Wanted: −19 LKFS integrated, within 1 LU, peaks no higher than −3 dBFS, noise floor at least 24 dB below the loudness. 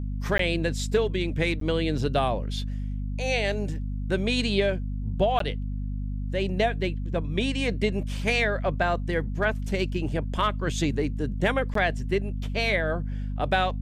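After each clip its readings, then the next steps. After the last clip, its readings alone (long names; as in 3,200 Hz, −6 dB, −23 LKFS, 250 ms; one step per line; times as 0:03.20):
number of dropouts 4; longest dropout 13 ms; mains hum 50 Hz; hum harmonics up to 250 Hz; level of the hum −28 dBFS; integrated loudness −27.0 LKFS; sample peak −11.0 dBFS; target loudness −19.0 LKFS
→ repair the gap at 0:00.38/0:01.60/0:05.39/0:11.74, 13 ms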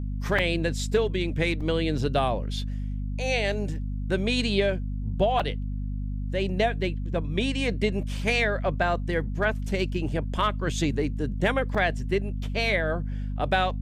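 number of dropouts 0; mains hum 50 Hz; hum harmonics up to 250 Hz; level of the hum −28 dBFS
→ mains-hum notches 50/100/150/200/250 Hz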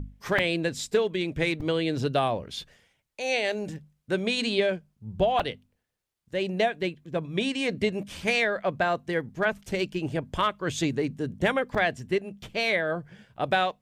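mains hum none found; integrated loudness −27.5 LKFS; sample peak −12.0 dBFS; target loudness −19.0 LKFS
→ level +8.5 dB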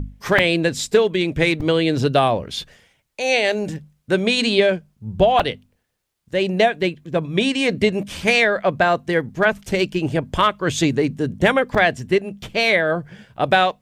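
integrated loudness −19.0 LKFS; sample peak −3.5 dBFS; background noise floor −69 dBFS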